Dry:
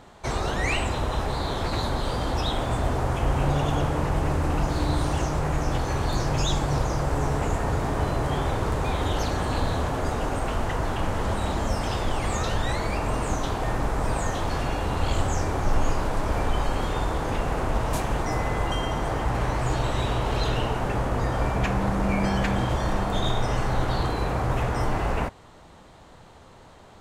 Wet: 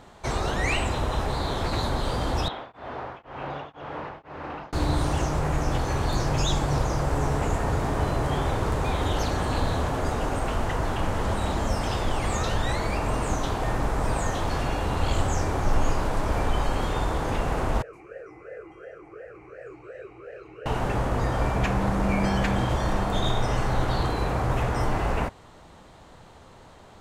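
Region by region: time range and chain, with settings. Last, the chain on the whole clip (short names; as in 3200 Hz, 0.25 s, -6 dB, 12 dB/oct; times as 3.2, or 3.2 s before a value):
2.48–4.73 HPF 800 Hz 6 dB/oct + air absorption 310 m + beating tremolo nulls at 2 Hz
17.82–20.66 fixed phaser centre 940 Hz, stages 6 + vowel sweep e-u 2.8 Hz
whole clip: dry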